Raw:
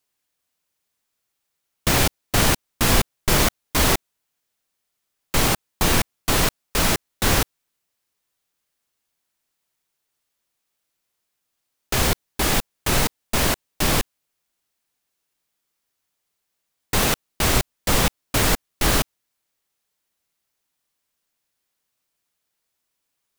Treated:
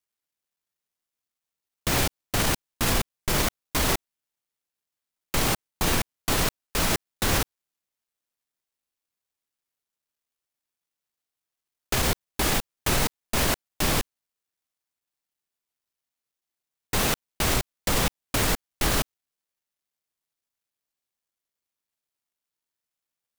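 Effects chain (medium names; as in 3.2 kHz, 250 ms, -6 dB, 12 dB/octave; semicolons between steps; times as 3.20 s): companding laws mixed up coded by A; peak limiter -13 dBFS, peak gain reduction 9 dB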